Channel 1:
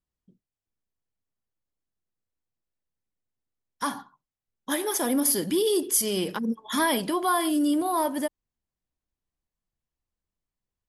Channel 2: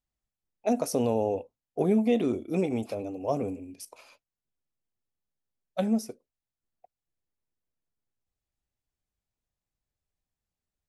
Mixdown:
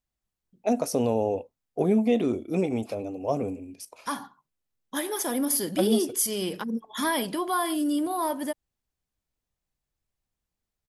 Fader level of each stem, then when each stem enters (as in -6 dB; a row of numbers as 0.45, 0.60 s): -2.5, +1.5 dB; 0.25, 0.00 s